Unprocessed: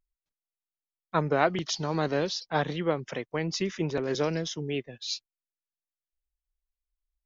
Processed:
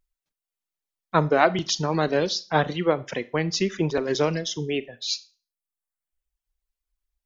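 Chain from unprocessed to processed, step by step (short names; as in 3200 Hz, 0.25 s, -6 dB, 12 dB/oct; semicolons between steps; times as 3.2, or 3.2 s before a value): reverb removal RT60 0.9 s; Schroeder reverb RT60 0.35 s, combs from 26 ms, DRR 16 dB; gain +6 dB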